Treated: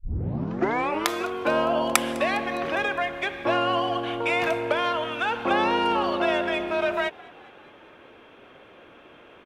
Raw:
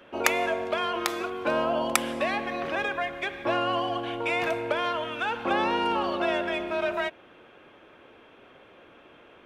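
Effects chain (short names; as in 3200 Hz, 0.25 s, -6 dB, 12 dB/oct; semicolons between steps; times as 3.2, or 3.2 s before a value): tape start at the beginning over 1.10 s; frequency-shifting echo 0.204 s, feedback 63%, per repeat +57 Hz, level -23.5 dB; gain +3 dB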